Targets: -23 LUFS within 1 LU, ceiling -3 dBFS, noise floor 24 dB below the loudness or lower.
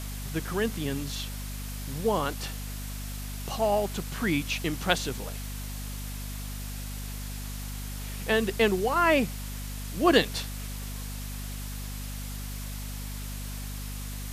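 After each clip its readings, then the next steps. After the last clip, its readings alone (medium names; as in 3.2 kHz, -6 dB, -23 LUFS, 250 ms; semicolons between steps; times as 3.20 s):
hum 50 Hz; highest harmonic 250 Hz; hum level -34 dBFS; noise floor -36 dBFS; noise floor target -55 dBFS; loudness -30.5 LUFS; peak level -6.5 dBFS; loudness target -23.0 LUFS
-> hum notches 50/100/150/200/250 Hz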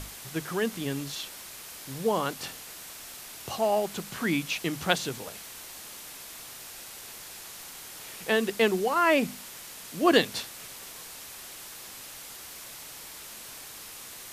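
hum not found; noise floor -44 dBFS; noise floor target -55 dBFS
-> noise print and reduce 11 dB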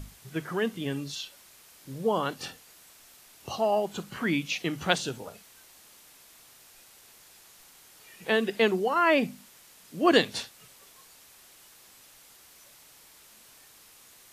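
noise floor -55 dBFS; loudness -28.0 LUFS; peak level -6.5 dBFS; loudness target -23.0 LUFS
-> trim +5 dB; peak limiter -3 dBFS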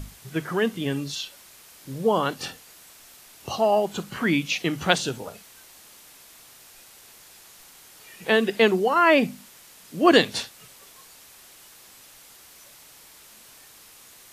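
loudness -23.0 LUFS; peak level -3.0 dBFS; noise floor -50 dBFS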